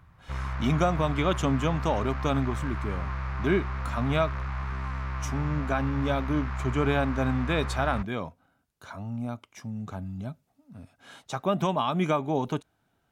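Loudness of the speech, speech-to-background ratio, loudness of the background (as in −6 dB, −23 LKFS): −29.0 LKFS, 5.0 dB, −34.0 LKFS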